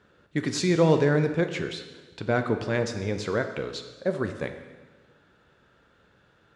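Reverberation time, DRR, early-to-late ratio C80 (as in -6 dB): 1.3 s, 6.5 dB, 10.5 dB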